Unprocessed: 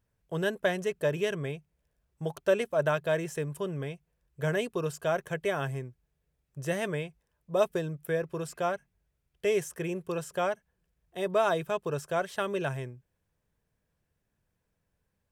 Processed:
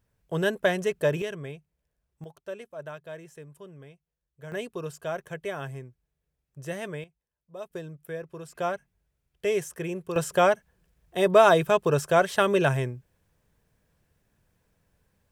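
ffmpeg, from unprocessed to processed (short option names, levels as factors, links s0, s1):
-af "asetnsamples=n=441:p=0,asendcmd='1.22 volume volume -3.5dB;2.24 volume volume -12.5dB;4.52 volume volume -3.5dB;7.04 volume volume -14dB;7.71 volume volume -6dB;8.55 volume volume 1dB;10.16 volume volume 9dB',volume=1.58"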